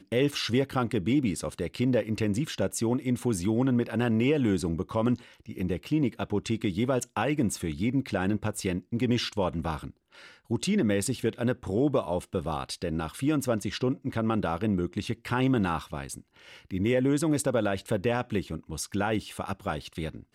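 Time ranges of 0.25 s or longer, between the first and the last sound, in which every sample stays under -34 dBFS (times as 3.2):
5.15–5.49
9.9–10.5
16.18–16.71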